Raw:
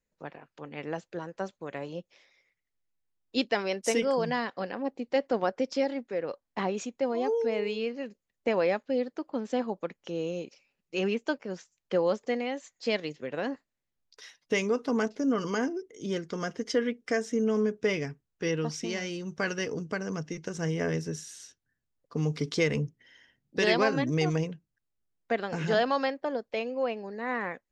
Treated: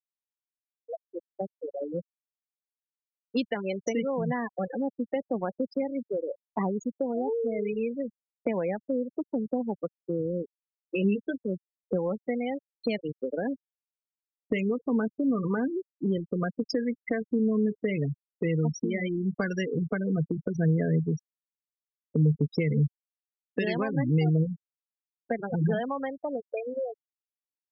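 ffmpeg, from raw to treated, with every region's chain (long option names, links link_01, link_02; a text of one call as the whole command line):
ffmpeg -i in.wav -filter_complex "[0:a]asettb=1/sr,asplit=3[link_01][link_02][link_03];[link_01]atrim=end=11.024[link_04];[link_02]atrim=start=11.02:end=11.44,asetpts=PTS-STARTPTS,afade=type=in:duration=0.004:curve=qsin,afade=type=out:start_time=0.416:duration=0.004:curve=qsin,asuperstop=centerf=950:order=4:qfactor=0.65,asplit=2[link_05][link_06];[link_06]adelay=15,volume=-4dB[link_07];[link_05][link_07]amix=inputs=2:normalize=0,atrim=end_sample=18522[link_08];[link_03]atrim=start=11.436[link_09];[link_04][link_08]acrossfade=duration=0.004:curve1=hsin:curve2=qsin[link_10];[link_10][link_09]acrossfade=duration=0.004:curve1=qsin:curve2=hsin,dynaudnorm=framelen=100:gausssize=31:maxgain=12dB,afftfilt=real='re*gte(hypot(re,im),0.224)':imag='im*gte(hypot(re,im),0.224)':win_size=1024:overlap=0.75,acrossover=split=170[link_11][link_12];[link_12]acompressor=threshold=-29dB:ratio=6[link_13];[link_11][link_13]amix=inputs=2:normalize=0" out.wav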